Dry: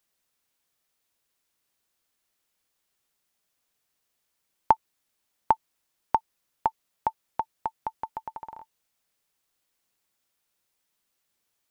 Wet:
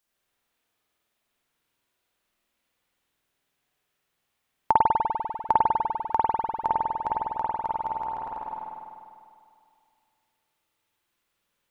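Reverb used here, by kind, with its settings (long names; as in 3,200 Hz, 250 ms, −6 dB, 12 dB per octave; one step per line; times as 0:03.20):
spring reverb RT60 2.3 s, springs 49 ms, chirp 40 ms, DRR −7 dB
level −3 dB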